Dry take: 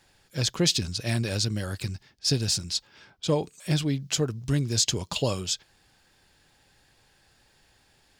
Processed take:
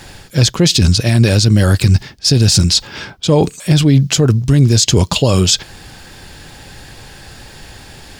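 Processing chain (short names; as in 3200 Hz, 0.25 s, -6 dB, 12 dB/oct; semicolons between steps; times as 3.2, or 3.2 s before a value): low shelf 340 Hz +5.5 dB; reverse; compressor 5:1, threshold -31 dBFS, peak gain reduction 14 dB; reverse; maximiser +25.5 dB; gain -1 dB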